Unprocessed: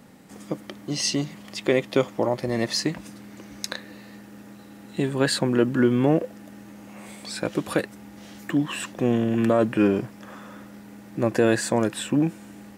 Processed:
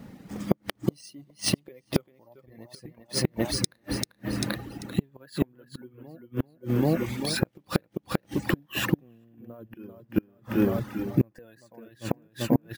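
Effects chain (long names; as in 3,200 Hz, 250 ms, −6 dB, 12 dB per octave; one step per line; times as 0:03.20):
fade-out on the ending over 1.39 s
low-shelf EQ 220 Hz +11 dB
repeating echo 392 ms, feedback 40%, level −4.5 dB
bad sample-rate conversion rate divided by 3×, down filtered, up hold
automatic gain control gain up to 13 dB
gate with flip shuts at −9 dBFS, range −30 dB
reverb reduction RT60 1.2 s
pitch vibrato 3.8 Hz 31 cents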